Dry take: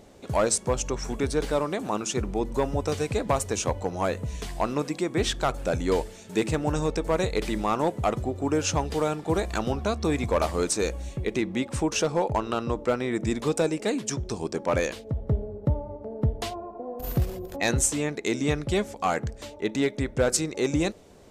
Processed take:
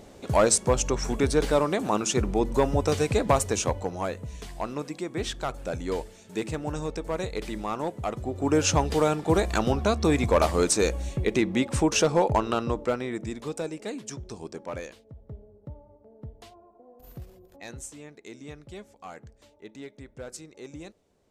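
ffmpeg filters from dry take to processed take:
-af "volume=3.76,afade=t=out:st=3.32:d=0.84:silence=0.375837,afade=t=in:st=8.18:d=0.4:silence=0.375837,afade=t=out:st=12.32:d=1:silence=0.281838,afade=t=out:st=14.47:d=0.64:silence=0.354813"

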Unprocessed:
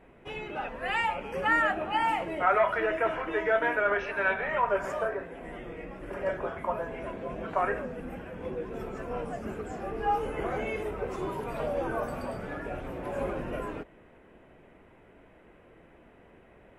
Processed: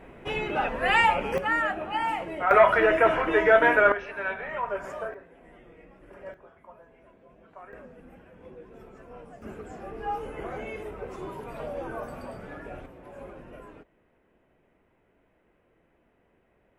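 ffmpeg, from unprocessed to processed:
-af "asetnsamples=n=441:p=0,asendcmd='1.38 volume volume -1dB;2.51 volume volume 7.5dB;3.92 volume volume -4dB;5.14 volume volume -11dB;6.34 volume volume -19dB;7.73 volume volume -11dB;9.42 volume volume -4dB;12.86 volume volume -11dB',volume=2.51"

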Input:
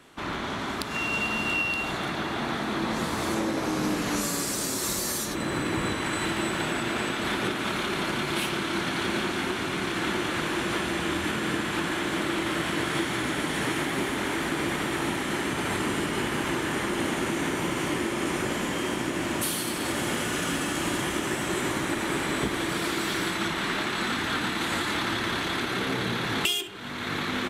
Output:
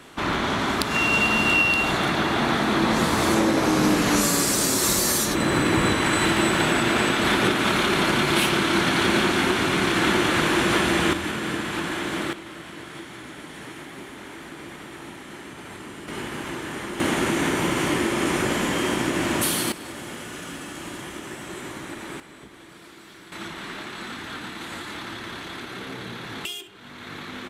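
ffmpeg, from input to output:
-af "asetnsamples=n=441:p=0,asendcmd='11.13 volume volume 0.5dB;12.33 volume volume -11dB;16.08 volume volume -4dB;17 volume volume 5dB;19.72 volume volume -7.5dB;22.2 volume volume -18dB;23.32 volume volume -7dB',volume=2.37"

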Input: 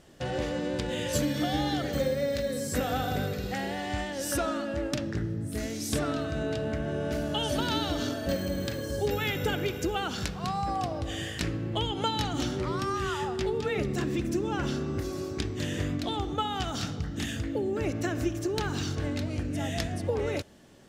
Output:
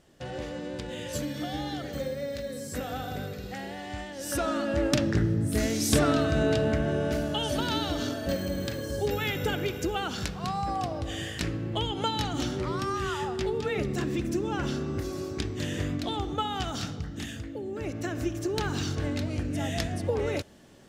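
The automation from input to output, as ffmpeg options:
-af "volume=5.31,afade=t=in:st=4.18:d=0.77:silence=0.266073,afade=t=out:st=6.52:d=0.86:silence=0.473151,afade=t=out:st=16.67:d=0.89:silence=0.446684,afade=t=in:st=17.56:d=1.1:silence=0.398107"

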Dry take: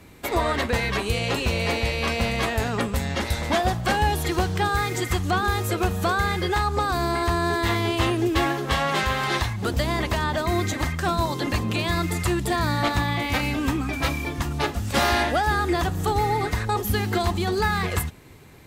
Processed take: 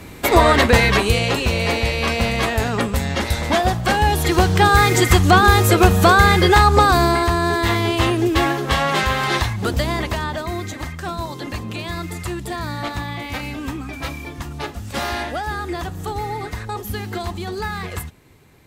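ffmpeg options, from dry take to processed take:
-af "volume=7.08,afade=t=out:st=0.8:d=0.56:silence=0.501187,afade=t=in:st=4.02:d=0.86:silence=0.473151,afade=t=out:st=6.83:d=0.47:silence=0.473151,afade=t=out:st=9.61:d=0.98:silence=0.398107"

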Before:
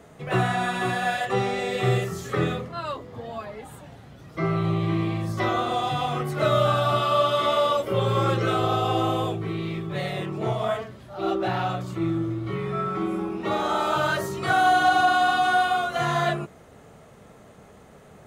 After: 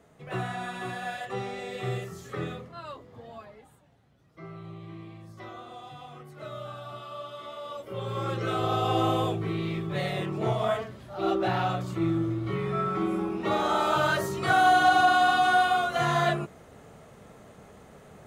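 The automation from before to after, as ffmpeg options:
-af "volume=2.51,afade=t=out:st=3.35:d=0.46:silence=0.354813,afade=t=in:st=7.61:d=0.7:silence=0.298538,afade=t=in:st=8.31:d=0.75:silence=0.446684"

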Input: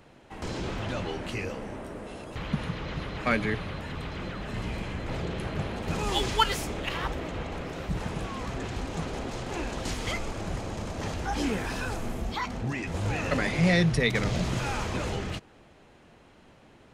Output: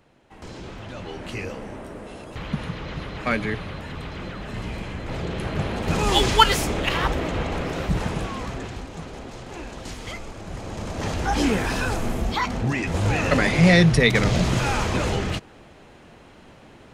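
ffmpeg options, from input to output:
-af "volume=8.91,afade=t=in:st=0.93:d=0.46:silence=0.473151,afade=t=in:st=5.04:d=1.14:silence=0.473151,afade=t=out:st=7.8:d=1.09:silence=0.266073,afade=t=in:st=10.46:d=0.82:silence=0.298538"

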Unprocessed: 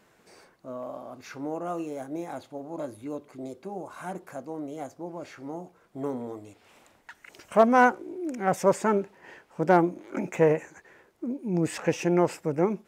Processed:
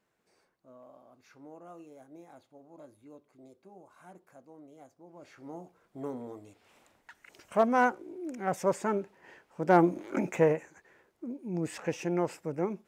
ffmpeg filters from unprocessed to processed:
-af "volume=1.41,afade=t=in:st=5.06:d=0.5:silence=0.298538,afade=t=in:st=9.64:d=0.32:silence=0.354813,afade=t=out:st=9.96:d=0.66:silence=0.316228"

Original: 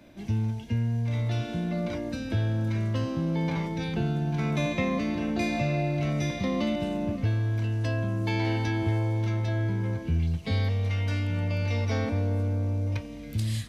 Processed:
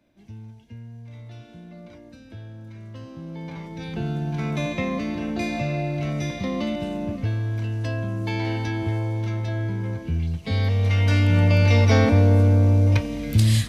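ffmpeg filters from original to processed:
-af "volume=3.55,afade=t=in:st=2.76:d=0.9:silence=0.446684,afade=t=in:st=3.66:d=0.47:silence=0.446684,afade=t=in:st=10.43:d=0.94:silence=0.316228"

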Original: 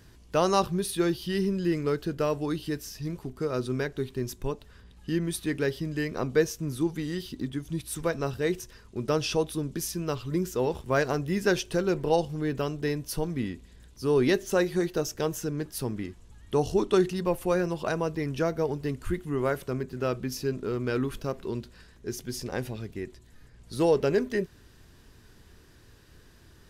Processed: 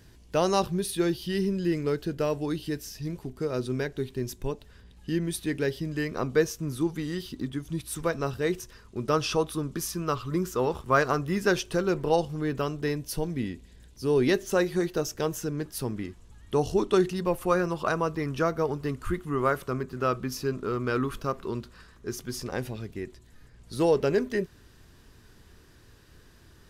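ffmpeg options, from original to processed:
-af "asetnsamples=n=441:p=0,asendcmd='5.89 equalizer g 3.5;9.13 equalizer g 11;11.36 equalizer g 5;12.96 equalizer g -5;14.28 equalizer g 2;17.39 equalizer g 10;22.5 equalizer g 1.5',equalizer=f=1200:t=o:w=0.49:g=-4"

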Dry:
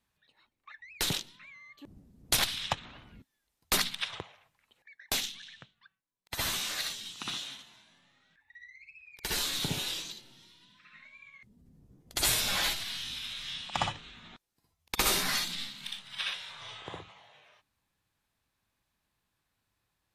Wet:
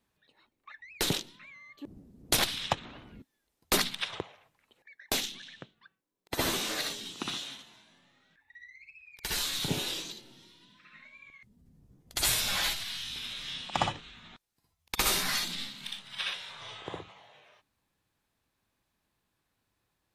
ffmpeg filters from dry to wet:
-af "asetnsamples=n=441:p=0,asendcmd='5.32 equalizer g 14.5;7.26 equalizer g 5.5;8.9 equalizer g -3.5;9.68 equalizer g 7;11.3 equalizer g -3;13.16 equalizer g 7;14 equalizer g -2;15.43 equalizer g 5',equalizer=f=360:t=o:w=1.9:g=7.5"

